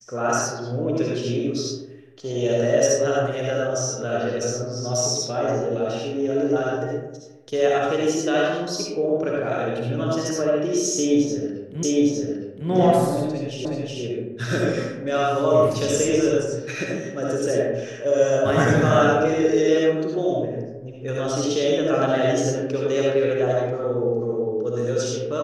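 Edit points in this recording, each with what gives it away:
11.83 s: repeat of the last 0.86 s
13.65 s: repeat of the last 0.37 s

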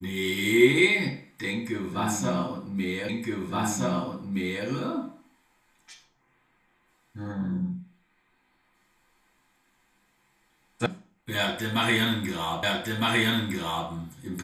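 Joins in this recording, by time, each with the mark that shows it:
3.09 s: repeat of the last 1.57 s
10.86 s: sound stops dead
12.63 s: repeat of the last 1.26 s

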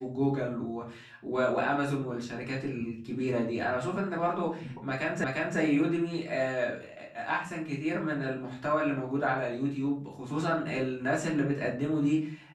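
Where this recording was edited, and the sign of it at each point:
5.24 s: repeat of the last 0.35 s

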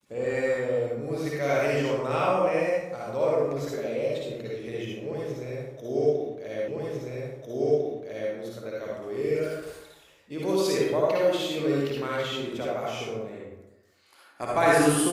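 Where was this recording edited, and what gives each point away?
6.68 s: repeat of the last 1.65 s

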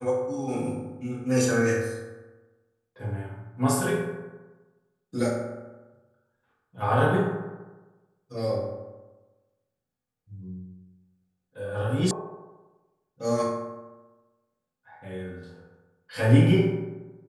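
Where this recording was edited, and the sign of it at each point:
12.11 s: sound stops dead

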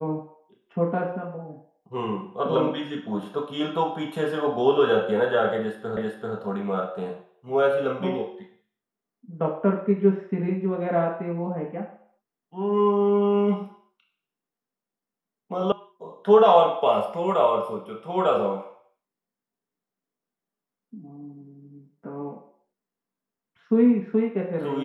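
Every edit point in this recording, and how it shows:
5.97 s: repeat of the last 0.39 s
15.72 s: sound stops dead

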